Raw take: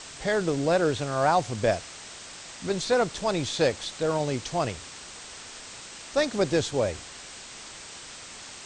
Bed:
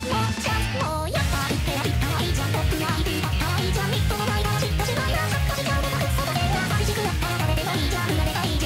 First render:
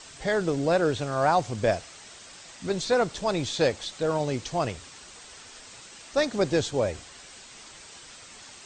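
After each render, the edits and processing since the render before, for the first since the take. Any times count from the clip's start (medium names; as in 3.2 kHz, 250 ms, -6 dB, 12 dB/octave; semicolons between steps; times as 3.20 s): noise reduction 6 dB, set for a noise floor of -43 dBFS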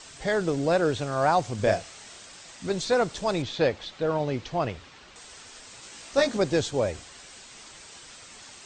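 1.56–2.25 s: doubling 29 ms -6.5 dB; 3.42–5.16 s: low-pass 3.7 kHz; 5.81–6.37 s: doubling 18 ms -2.5 dB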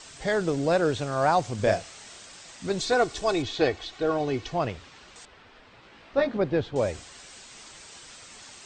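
2.79–4.53 s: comb 2.7 ms, depth 63%; 5.25–6.76 s: distance through air 370 m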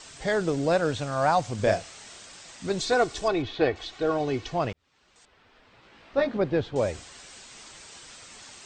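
0.77–1.51 s: peaking EQ 380 Hz -12 dB 0.26 oct; 3.28–3.76 s: low-pass 3.1 kHz; 4.73–6.29 s: fade in linear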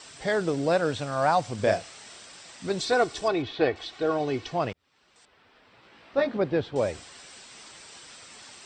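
high-pass 110 Hz 6 dB/octave; band-stop 6.6 kHz, Q 9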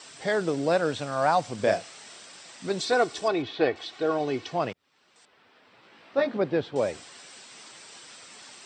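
high-pass 140 Hz 12 dB/octave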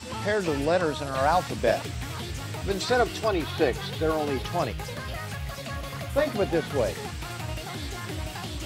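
add bed -11 dB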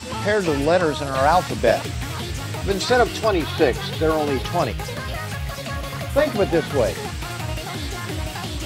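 trim +6 dB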